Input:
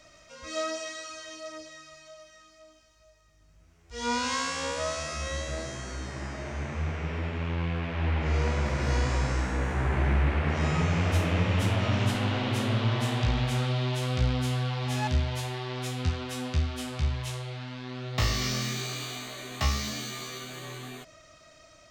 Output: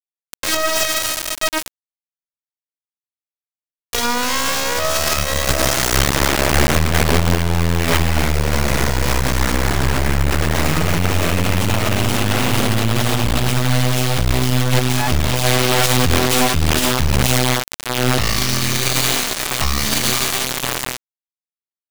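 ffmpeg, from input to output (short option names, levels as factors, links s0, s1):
-filter_complex "[0:a]asettb=1/sr,asplit=3[s0][s1][s2];[s0]atrim=end=7.084[s3];[s1]atrim=start=7.08:end=7.84,asetpts=PTS-STARTPTS,afade=t=in:d=0.004:c=qsin,afade=t=out:st=0.756:d=0.004:c=qsin,highshelf=f=2300:g=-10.5[s4];[s2]atrim=start=7.836[s5];[s3][s4]acrossfade=d=0.004:c1=hsin:c2=qsin[s6];[s6][s5]acrossfade=d=0.004:c1=qsin:c2=hsin,acrusher=bits=3:dc=4:mix=0:aa=0.000001,alimiter=level_in=33.5:limit=0.891:release=50:level=0:latency=1,volume=0.501"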